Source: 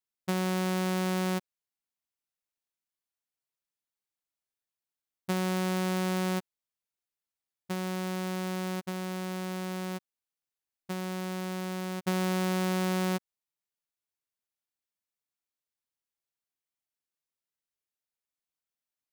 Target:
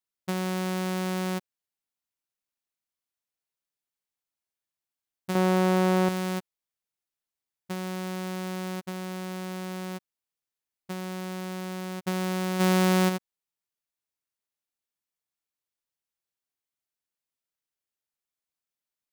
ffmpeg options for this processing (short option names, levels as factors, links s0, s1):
-filter_complex "[0:a]asettb=1/sr,asplit=3[s0][s1][s2];[s0]atrim=end=5.354[s3];[s1]atrim=start=5.35:end=6.09,asetpts=PTS-STARTPTS,afade=t=in:d=0.004:c=qsin,afade=t=out:st=0.736:d=0.004:c=qsin,equalizer=f=510:w=0.31:g=9.5[s4];[s2]atrim=start=6.086[s5];[s3][s4]acrossfade=d=0.004:c1=hsin:c2=qsin[s6];[s6][s5]acrossfade=d=0.004:c1=qsin:c2=hsin,asplit=3[s7][s8][s9];[s7]afade=t=out:st=12.59:d=0.02[s10];[s8]acontrast=83,afade=t=in:st=12.59:d=0.02,afade=t=out:st=13.08:d=0.02[s11];[s9]afade=t=in:st=13.08:d=0.02[s12];[s10][s11][s12]amix=inputs=3:normalize=0"